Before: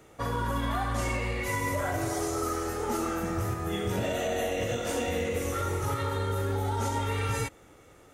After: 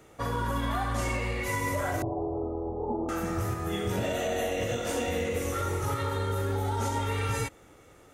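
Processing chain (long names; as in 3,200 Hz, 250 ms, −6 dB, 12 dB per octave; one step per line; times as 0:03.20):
0:02.02–0:03.09: Butterworth low-pass 990 Hz 72 dB per octave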